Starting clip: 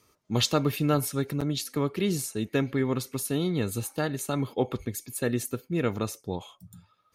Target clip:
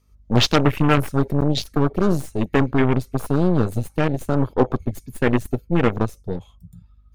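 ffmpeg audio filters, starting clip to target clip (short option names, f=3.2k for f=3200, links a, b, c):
-af "aeval=exprs='0.266*(cos(1*acos(clip(val(0)/0.266,-1,1)))-cos(1*PI/2))+0.015*(cos(5*acos(clip(val(0)/0.266,-1,1)))-cos(5*PI/2))+0.0944*(cos(6*acos(clip(val(0)/0.266,-1,1)))-cos(6*PI/2))+0.119*(cos(8*acos(clip(val(0)/0.266,-1,1)))-cos(8*PI/2))':c=same,aeval=exprs='val(0)+0.00251*(sin(2*PI*50*n/s)+sin(2*PI*2*50*n/s)/2+sin(2*PI*3*50*n/s)/3+sin(2*PI*4*50*n/s)/4+sin(2*PI*5*50*n/s)/5)':c=same,afwtdn=0.0251,volume=6dB"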